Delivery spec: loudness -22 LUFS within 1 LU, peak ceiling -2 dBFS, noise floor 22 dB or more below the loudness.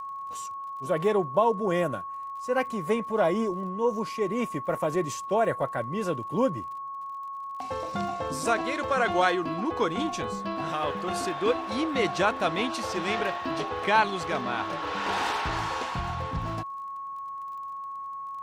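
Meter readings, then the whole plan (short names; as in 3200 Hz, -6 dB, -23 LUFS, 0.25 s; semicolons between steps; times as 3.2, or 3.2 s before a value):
ticks 38/s; steady tone 1100 Hz; tone level -34 dBFS; loudness -28.5 LUFS; peak -10.0 dBFS; loudness target -22.0 LUFS
-> de-click; notch 1100 Hz, Q 30; gain +6.5 dB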